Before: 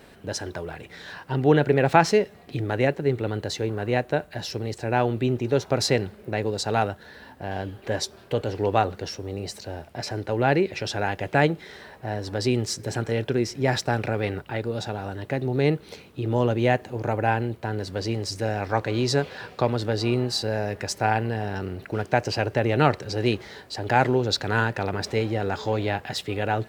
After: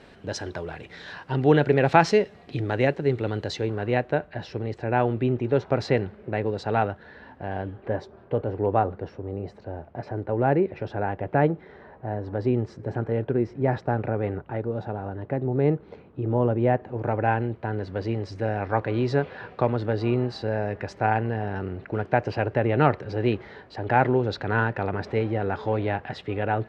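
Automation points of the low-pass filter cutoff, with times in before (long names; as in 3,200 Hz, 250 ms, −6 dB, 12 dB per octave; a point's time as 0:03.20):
0:03.43 5,300 Hz
0:04.29 2,300 Hz
0:07.43 2,300 Hz
0:08.00 1,200 Hz
0:16.71 1,200 Hz
0:17.15 2,100 Hz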